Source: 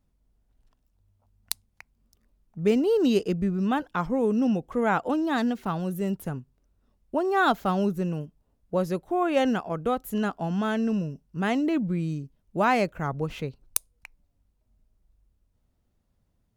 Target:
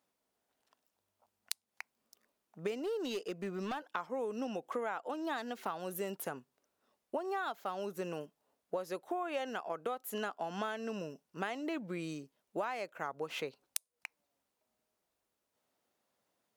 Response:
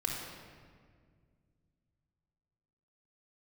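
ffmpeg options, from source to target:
-filter_complex "[0:a]highpass=500,acompressor=threshold=-36dB:ratio=16,asettb=1/sr,asplit=3[a][b][c];[a]atrim=end=2.754[d];[b]atrim=start=2.75:end=3.8,asetpts=PTS-STARTPTS,afade=t=in:d=0.004:c=qsin,afade=t=out:st=1.046:d=0.004:c=qsin,asoftclip=type=hard:threshold=-35dB[e];[c]atrim=start=3.796[f];[d][e]acrossfade=d=0.004:c1=hsin:c2=qsin[g];[g][f]acrossfade=d=0.004:c1=qsin:c2=hsin,volume=2.5dB"

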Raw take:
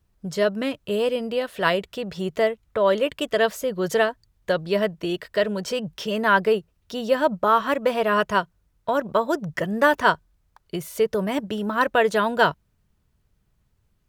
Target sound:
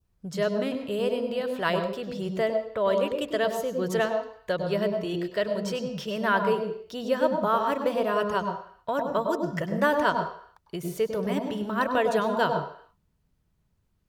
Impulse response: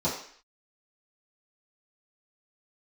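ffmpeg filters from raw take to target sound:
-filter_complex "[0:a]asplit=2[a][b];[1:a]atrim=start_sample=2205,adelay=98[c];[b][c]afir=irnorm=-1:irlink=0,volume=-16dB[d];[a][d]amix=inputs=2:normalize=0,adynamicequalizer=threshold=0.02:dfrequency=1900:dqfactor=1.2:tfrequency=1900:tqfactor=1.2:attack=5:release=100:ratio=0.375:range=2.5:mode=cutabove:tftype=bell,volume=-5.5dB"

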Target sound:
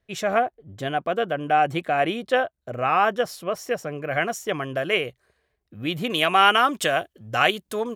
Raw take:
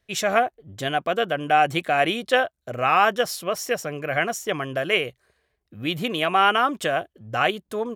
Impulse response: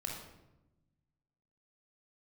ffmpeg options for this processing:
-af "asetnsamples=n=441:p=0,asendcmd='4.11 highshelf g -3;6.1 highshelf g 6.5',highshelf=f=2.1k:g=-8.5"

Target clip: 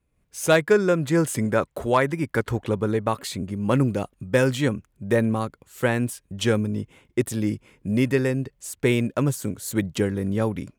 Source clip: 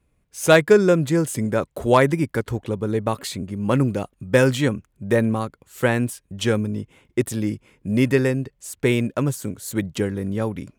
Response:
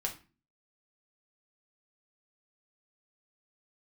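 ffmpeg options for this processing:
-filter_complex "[0:a]asettb=1/sr,asplit=3[a][b][c];[a]atrim=end=0.614[d];[b]atrim=start=0.61:end=3.2,asetpts=PTS-STARTPTS,afade=t=in:d=0.004:c=qsin,afade=t=out:st=2.586:d=0.004:c=qsin,equalizer=f=1.4k:w=0.63:g=4.5[e];[c]atrim=start=3.196[f];[d][e]acrossfade=d=0.004:c1=hsin:c2=qsin[g];[g][f]acrossfade=d=0.004:c1=qsin:c2=hsin,dynaudnorm=f=120:g=3:m=8dB,volume=-7dB"

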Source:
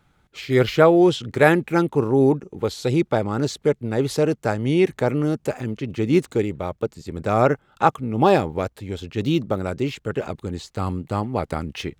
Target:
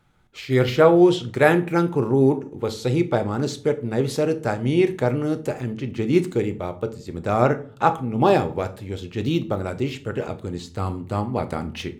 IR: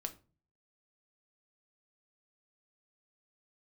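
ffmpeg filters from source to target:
-filter_complex "[0:a]asplit=2[a][b];[1:a]atrim=start_sample=2205,asetrate=32193,aresample=44100[c];[b][c]afir=irnorm=-1:irlink=0,volume=7.5dB[d];[a][d]amix=inputs=2:normalize=0,volume=-11.5dB"

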